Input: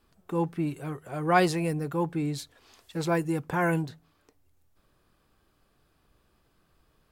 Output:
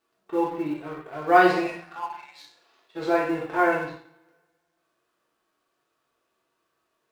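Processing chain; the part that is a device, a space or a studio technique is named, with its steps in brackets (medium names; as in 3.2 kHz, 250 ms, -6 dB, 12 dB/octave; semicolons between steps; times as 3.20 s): 1.66–2.40 s: steep high-pass 670 Hz 72 dB/octave; two-slope reverb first 0.65 s, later 2.2 s, from -25 dB, DRR -4.5 dB; harmonic-percussive split percussive -7 dB; phone line with mismatched companding (band-pass 350–3400 Hz; companding laws mixed up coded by A); trim +2 dB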